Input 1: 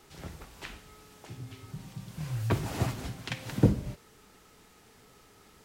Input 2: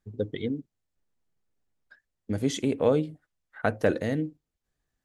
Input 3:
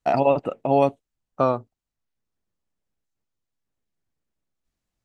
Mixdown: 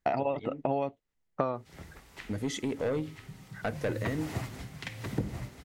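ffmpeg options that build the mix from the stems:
ffmpeg -i stem1.wav -i stem2.wav -i stem3.wav -filter_complex "[0:a]adelay=1550,volume=-5dB,asplit=2[link_01][link_02];[link_02]volume=-7.5dB[link_03];[1:a]asoftclip=type=tanh:threshold=-19.5dB,volume=-3.5dB[link_04];[2:a]agate=range=-10dB:threshold=-52dB:ratio=16:detection=peak,lowpass=4800,volume=2dB[link_05];[link_03]aecho=0:1:989:1[link_06];[link_01][link_04][link_05][link_06]amix=inputs=4:normalize=0,equalizer=frequency=2000:width_type=o:width=0.28:gain=6.5,acompressor=threshold=-26dB:ratio=10" out.wav

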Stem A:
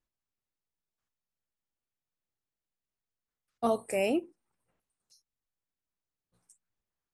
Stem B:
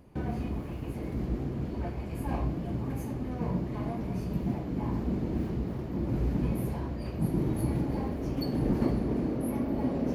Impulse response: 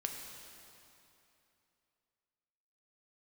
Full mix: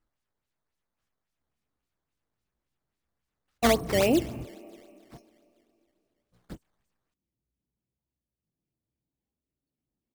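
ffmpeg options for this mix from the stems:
-filter_complex "[0:a]volume=3dB,asplit=3[link_01][link_02][link_03];[link_02]volume=-12dB[link_04];[1:a]asoftclip=type=tanh:threshold=-29.5dB,adelay=1250,volume=-4dB[link_05];[link_03]apad=whole_len=502706[link_06];[link_05][link_06]sidechaingate=range=-54dB:threshold=-57dB:ratio=16:detection=peak[link_07];[2:a]atrim=start_sample=2205[link_08];[link_04][link_08]afir=irnorm=-1:irlink=0[link_09];[link_01][link_07][link_09]amix=inputs=3:normalize=0,lowshelf=frequency=190:gain=4.5,acrusher=samples=10:mix=1:aa=0.000001:lfo=1:lforange=16:lforate=3.6"

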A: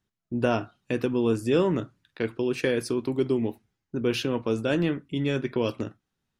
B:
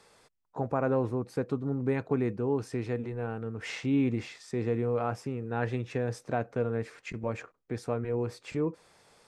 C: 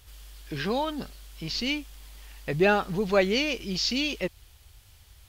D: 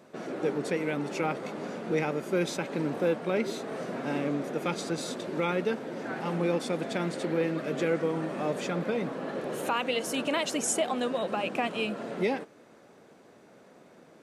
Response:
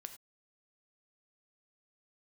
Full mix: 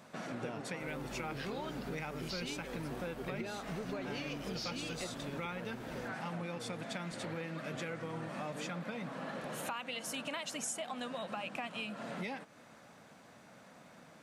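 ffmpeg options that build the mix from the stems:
-filter_complex "[0:a]volume=-9.5dB[link_01];[1:a]volume=-11dB,asplit=2[link_02][link_03];[2:a]acompressor=threshold=-28dB:ratio=6,adelay=800,volume=-1dB[link_04];[3:a]equalizer=frequency=390:width_type=o:width=0.89:gain=-14.5,volume=2.5dB[link_05];[link_03]apad=whole_len=281859[link_06];[link_01][link_06]sidechaincompress=threshold=-40dB:ratio=8:attack=16:release=1240[link_07];[link_07][link_02][link_04][link_05]amix=inputs=4:normalize=0,acompressor=threshold=-39dB:ratio=4"

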